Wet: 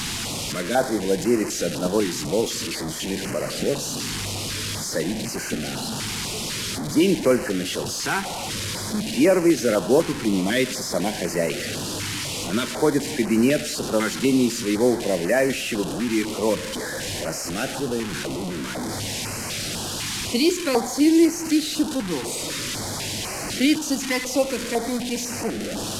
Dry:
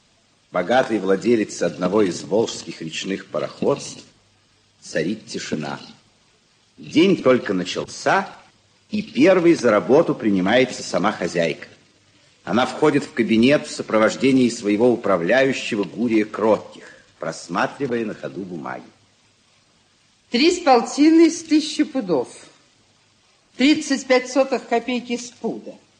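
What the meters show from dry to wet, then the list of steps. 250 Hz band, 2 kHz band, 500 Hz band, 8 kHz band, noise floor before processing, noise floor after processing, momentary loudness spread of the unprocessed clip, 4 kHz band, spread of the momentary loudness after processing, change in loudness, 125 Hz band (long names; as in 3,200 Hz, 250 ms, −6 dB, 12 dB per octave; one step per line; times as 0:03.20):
−3.0 dB, −3.0 dB, −4.0 dB, +7.0 dB, −59 dBFS, −30 dBFS, 14 LU, +2.0 dB, 8 LU, −4.0 dB, 0.0 dB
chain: linear delta modulator 64 kbit/s, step −18.5 dBFS
dynamic equaliser 1,200 Hz, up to −5 dB, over −38 dBFS, Q 5.1
notch on a step sequencer 4 Hz 590–3,500 Hz
level −3 dB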